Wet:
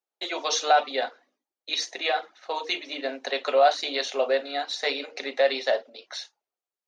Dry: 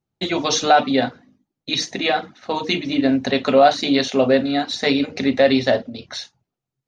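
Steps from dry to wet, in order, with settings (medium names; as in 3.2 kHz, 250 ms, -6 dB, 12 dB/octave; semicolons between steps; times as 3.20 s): high-pass 450 Hz 24 dB/octave; trim -5.5 dB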